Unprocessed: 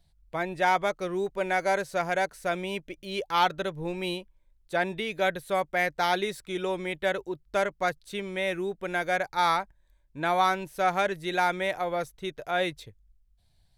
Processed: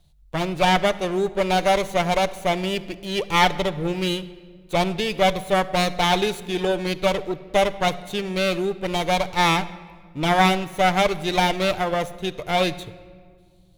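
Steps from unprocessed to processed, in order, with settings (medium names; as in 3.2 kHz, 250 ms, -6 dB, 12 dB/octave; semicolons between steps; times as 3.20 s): comb filter that takes the minimum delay 0.3 ms; simulated room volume 2400 m³, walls mixed, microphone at 0.42 m; trim +7.5 dB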